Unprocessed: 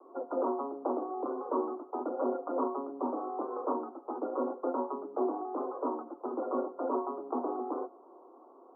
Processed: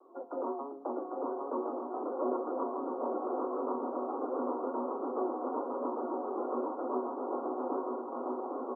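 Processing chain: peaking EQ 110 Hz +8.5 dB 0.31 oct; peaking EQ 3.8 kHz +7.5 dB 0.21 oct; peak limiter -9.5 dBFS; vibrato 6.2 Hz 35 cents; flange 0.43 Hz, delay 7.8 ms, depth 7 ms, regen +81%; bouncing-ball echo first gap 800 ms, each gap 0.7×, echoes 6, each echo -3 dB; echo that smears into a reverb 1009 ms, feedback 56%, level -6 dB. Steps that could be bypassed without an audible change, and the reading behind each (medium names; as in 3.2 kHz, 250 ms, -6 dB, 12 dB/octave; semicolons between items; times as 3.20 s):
peaking EQ 110 Hz: input has nothing below 200 Hz; peaking EQ 3.8 kHz: input has nothing above 1.4 kHz; peak limiter -9.5 dBFS: peak at its input -19.0 dBFS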